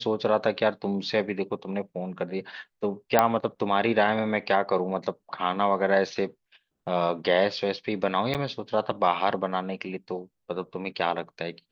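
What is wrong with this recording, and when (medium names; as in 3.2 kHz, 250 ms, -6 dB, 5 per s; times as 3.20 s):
3.19 s: pop -5 dBFS
8.34–8.35 s: dropout 8.2 ms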